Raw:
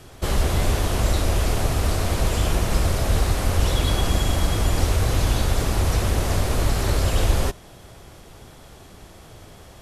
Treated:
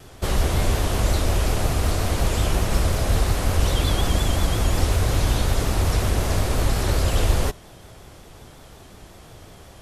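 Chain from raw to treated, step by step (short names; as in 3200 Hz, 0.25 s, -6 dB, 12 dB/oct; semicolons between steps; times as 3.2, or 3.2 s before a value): vibrato 5.5 Hz 82 cents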